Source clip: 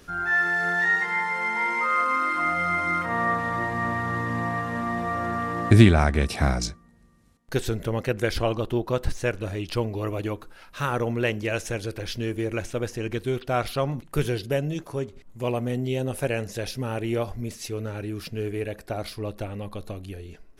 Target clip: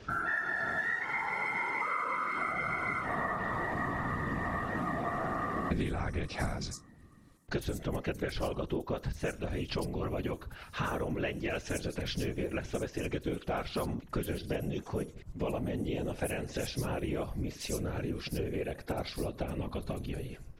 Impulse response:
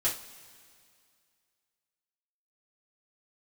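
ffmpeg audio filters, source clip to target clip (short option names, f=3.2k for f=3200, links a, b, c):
-filter_complex "[0:a]afftfilt=real='hypot(re,im)*cos(2*PI*random(0))':imag='hypot(re,im)*sin(2*PI*random(1))':win_size=512:overlap=0.75,acompressor=threshold=-38dB:ratio=6,acrossover=split=5900[a][b];[b]adelay=100[c];[a][c]amix=inputs=2:normalize=0,volume=7dB"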